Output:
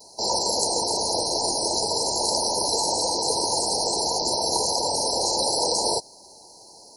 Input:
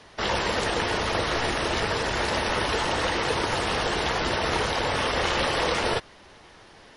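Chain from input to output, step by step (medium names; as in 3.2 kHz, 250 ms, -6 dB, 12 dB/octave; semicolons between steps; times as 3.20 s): vibrato 0.49 Hz 20 cents; RIAA curve recording; FFT band-reject 1–4 kHz; trim +3 dB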